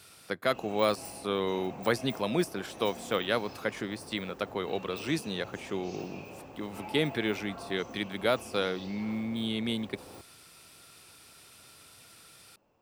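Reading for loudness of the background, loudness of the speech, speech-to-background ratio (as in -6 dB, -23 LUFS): -46.0 LUFS, -32.5 LUFS, 13.5 dB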